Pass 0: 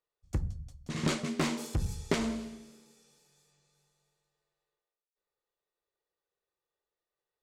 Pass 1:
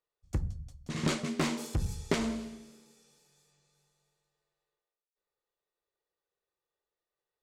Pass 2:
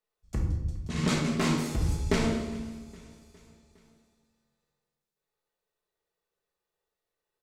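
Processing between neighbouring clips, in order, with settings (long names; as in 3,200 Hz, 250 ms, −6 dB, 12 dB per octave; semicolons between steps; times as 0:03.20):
no processing that can be heard
repeating echo 410 ms, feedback 57%, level −22 dB; convolution reverb RT60 1.0 s, pre-delay 5 ms, DRR −1.5 dB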